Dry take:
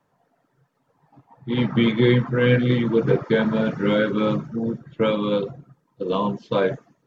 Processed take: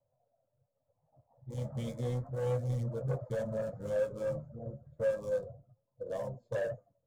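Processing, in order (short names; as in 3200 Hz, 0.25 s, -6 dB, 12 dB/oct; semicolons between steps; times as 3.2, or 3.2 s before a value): Wiener smoothing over 15 samples; EQ curve 110 Hz 0 dB, 170 Hz -16 dB, 380 Hz -24 dB, 570 Hz +3 dB, 900 Hz -17 dB, 1900 Hz -24 dB, 4900 Hz -12 dB, 7300 Hz +2 dB; soft clip -23 dBFS, distortion -14 dB; flange 0.32 Hz, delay 7.3 ms, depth 7.3 ms, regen +50%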